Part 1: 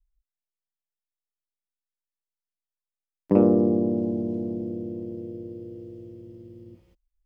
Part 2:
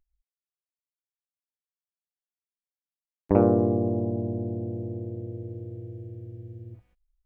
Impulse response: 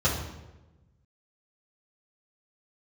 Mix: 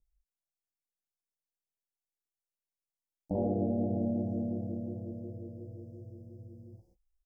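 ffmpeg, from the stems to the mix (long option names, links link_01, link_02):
-filter_complex "[0:a]acompressor=threshold=-22dB:ratio=6,volume=-7dB[link_01];[1:a]flanger=delay=19.5:depth=2.9:speed=2.8,adelay=0.3,volume=-2.5dB[link_02];[link_01][link_02]amix=inputs=2:normalize=0,asuperstop=centerf=2100:order=12:qfactor=0.5,alimiter=limit=-23dB:level=0:latency=1:release=33"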